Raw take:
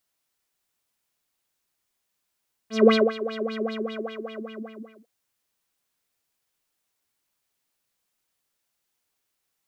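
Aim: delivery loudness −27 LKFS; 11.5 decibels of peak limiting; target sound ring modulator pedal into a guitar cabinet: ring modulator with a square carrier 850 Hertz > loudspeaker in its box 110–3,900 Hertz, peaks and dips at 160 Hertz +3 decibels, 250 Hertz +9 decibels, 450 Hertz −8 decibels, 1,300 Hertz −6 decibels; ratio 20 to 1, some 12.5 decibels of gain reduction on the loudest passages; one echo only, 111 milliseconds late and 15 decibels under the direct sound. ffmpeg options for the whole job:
ffmpeg -i in.wav -af "acompressor=threshold=-23dB:ratio=20,alimiter=level_in=4dB:limit=-24dB:level=0:latency=1,volume=-4dB,aecho=1:1:111:0.178,aeval=exprs='val(0)*sgn(sin(2*PI*850*n/s))':channel_layout=same,highpass=110,equalizer=frequency=160:width_type=q:width=4:gain=3,equalizer=frequency=250:width_type=q:width=4:gain=9,equalizer=frequency=450:width_type=q:width=4:gain=-8,equalizer=frequency=1300:width_type=q:width=4:gain=-6,lowpass=frequency=3900:width=0.5412,lowpass=frequency=3900:width=1.3066,volume=11.5dB" out.wav

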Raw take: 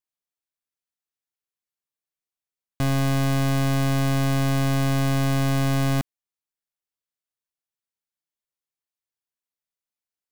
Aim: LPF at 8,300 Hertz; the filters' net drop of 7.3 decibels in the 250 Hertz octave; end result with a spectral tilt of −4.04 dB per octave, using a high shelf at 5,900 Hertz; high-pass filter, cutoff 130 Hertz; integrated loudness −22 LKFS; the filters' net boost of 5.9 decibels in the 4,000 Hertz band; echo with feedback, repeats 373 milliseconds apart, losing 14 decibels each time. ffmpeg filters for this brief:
ffmpeg -i in.wav -af "highpass=130,lowpass=8300,equalizer=frequency=250:width_type=o:gain=-8.5,equalizer=frequency=4000:width_type=o:gain=5.5,highshelf=frequency=5900:gain=6.5,aecho=1:1:373|746:0.2|0.0399,volume=3.5dB" out.wav

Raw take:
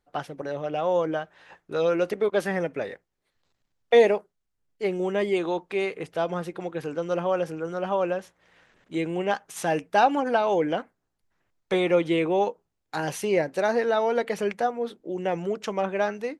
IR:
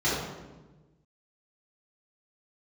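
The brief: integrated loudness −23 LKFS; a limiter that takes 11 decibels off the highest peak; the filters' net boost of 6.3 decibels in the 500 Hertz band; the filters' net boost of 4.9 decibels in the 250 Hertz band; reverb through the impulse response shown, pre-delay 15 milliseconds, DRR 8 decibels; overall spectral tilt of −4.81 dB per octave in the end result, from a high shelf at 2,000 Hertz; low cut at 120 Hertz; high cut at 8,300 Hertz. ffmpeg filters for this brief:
-filter_complex "[0:a]highpass=120,lowpass=8300,equalizer=frequency=250:width_type=o:gain=4.5,equalizer=frequency=500:width_type=o:gain=6,highshelf=frequency=2000:gain=4.5,alimiter=limit=-12.5dB:level=0:latency=1,asplit=2[link_01][link_02];[1:a]atrim=start_sample=2205,adelay=15[link_03];[link_02][link_03]afir=irnorm=-1:irlink=0,volume=-21.5dB[link_04];[link_01][link_04]amix=inputs=2:normalize=0,volume=-1dB"

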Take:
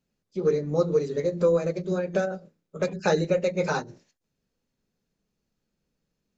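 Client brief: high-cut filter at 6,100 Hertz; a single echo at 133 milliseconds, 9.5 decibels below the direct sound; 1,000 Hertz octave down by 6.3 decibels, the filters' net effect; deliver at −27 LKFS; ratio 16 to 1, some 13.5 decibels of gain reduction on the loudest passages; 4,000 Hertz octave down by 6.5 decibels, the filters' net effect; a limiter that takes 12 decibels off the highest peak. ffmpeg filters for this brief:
ffmpeg -i in.wav -af "lowpass=6100,equalizer=frequency=1000:width_type=o:gain=-8.5,equalizer=frequency=4000:width_type=o:gain=-6,acompressor=threshold=-32dB:ratio=16,alimiter=level_in=8dB:limit=-24dB:level=0:latency=1,volume=-8dB,aecho=1:1:133:0.335,volume=14dB" out.wav

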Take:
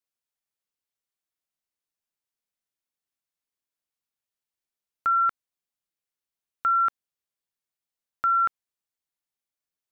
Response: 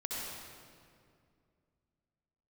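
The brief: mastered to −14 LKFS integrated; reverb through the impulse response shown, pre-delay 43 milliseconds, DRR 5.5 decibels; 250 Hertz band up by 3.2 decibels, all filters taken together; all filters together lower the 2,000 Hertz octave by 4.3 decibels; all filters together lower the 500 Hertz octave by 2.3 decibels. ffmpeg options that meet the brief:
-filter_complex "[0:a]equalizer=frequency=250:width_type=o:gain=5.5,equalizer=frequency=500:width_type=o:gain=-4,equalizer=frequency=2000:width_type=o:gain=-8,asplit=2[link_01][link_02];[1:a]atrim=start_sample=2205,adelay=43[link_03];[link_02][link_03]afir=irnorm=-1:irlink=0,volume=-8.5dB[link_04];[link_01][link_04]amix=inputs=2:normalize=0,volume=16dB"

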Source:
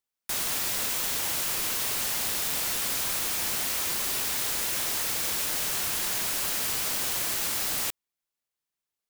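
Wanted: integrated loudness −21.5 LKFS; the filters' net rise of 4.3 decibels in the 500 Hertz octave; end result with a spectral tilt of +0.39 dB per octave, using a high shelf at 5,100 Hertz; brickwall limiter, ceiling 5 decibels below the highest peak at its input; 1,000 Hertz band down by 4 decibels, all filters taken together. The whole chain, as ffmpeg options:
ffmpeg -i in.wav -af "equalizer=frequency=500:width_type=o:gain=7.5,equalizer=frequency=1000:width_type=o:gain=-8,highshelf=frequency=5100:gain=4.5,volume=3dB,alimiter=limit=-14dB:level=0:latency=1" out.wav

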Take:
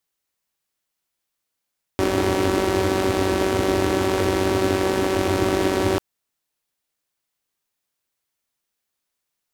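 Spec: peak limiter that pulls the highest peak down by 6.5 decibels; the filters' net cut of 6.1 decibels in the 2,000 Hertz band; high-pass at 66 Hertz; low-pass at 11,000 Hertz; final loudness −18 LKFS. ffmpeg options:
ffmpeg -i in.wav -af "highpass=66,lowpass=11000,equalizer=frequency=2000:width_type=o:gain=-8,volume=7dB,alimiter=limit=-7.5dB:level=0:latency=1" out.wav

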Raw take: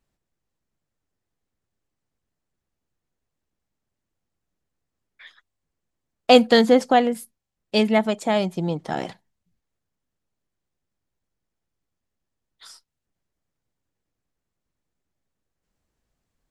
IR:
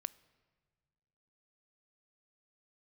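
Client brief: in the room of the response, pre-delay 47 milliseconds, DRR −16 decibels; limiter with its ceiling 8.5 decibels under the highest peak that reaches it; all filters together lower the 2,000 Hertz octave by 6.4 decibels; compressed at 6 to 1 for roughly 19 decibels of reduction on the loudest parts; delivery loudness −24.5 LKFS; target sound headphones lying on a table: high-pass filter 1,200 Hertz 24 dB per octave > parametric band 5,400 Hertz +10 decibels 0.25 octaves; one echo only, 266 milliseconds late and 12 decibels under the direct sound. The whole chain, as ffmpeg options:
-filter_complex "[0:a]equalizer=frequency=2000:width_type=o:gain=-8,acompressor=threshold=-31dB:ratio=6,alimiter=level_in=1.5dB:limit=-24dB:level=0:latency=1,volume=-1.5dB,aecho=1:1:266:0.251,asplit=2[link_01][link_02];[1:a]atrim=start_sample=2205,adelay=47[link_03];[link_02][link_03]afir=irnorm=-1:irlink=0,volume=18.5dB[link_04];[link_01][link_04]amix=inputs=2:normalize=0,highpass=frequency=1200:width=0.5412,highpass=frequency=1200:width=1.3066,equalizer=frequency=5400:width_type=o:width=0.25:gain=10,volume=6.5dB"

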